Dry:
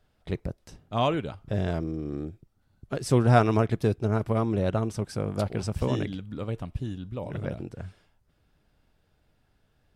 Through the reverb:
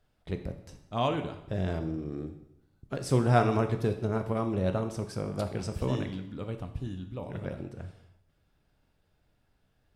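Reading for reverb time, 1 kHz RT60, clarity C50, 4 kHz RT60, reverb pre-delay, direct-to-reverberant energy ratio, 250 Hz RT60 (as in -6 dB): 0.80 s, 0.80 s, 10.5 dB, 0.75 s, 11 ms, 6.5 dB, 0.80 s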